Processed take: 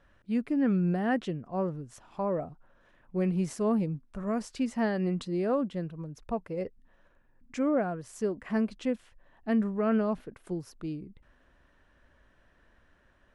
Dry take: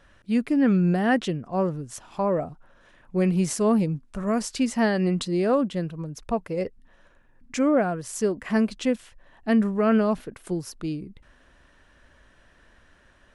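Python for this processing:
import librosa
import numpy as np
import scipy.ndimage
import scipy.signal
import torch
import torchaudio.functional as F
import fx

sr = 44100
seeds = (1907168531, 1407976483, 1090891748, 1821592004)

y = fx.high_shelf(x, sr, hz=3100.0, db=-9.0)
y = F.gain(torch.from_numpy(y), -6.0).numpy()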